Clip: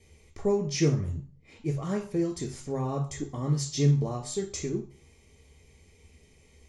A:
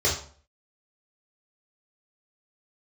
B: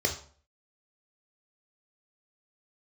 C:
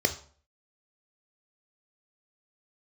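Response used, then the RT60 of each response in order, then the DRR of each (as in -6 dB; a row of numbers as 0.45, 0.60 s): B; 0.45, 0.45, 0.45 s; -5.0, 3.0, 7.5 dB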